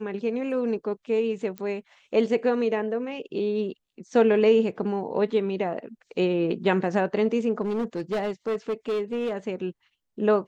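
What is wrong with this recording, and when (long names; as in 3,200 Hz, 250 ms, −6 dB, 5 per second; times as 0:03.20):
0:01.58: click −21 dBFS
0:07.61–0:09.37: clipping −23 dBFS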